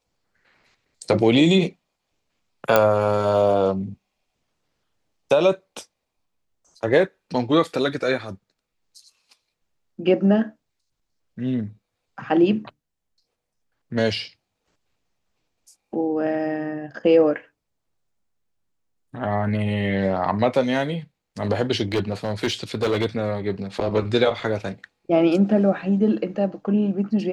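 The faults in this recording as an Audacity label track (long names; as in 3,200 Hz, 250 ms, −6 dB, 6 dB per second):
2.760000	2.760000	click −2 dBFS
21.920000	23.060000	clipping −17 dBFS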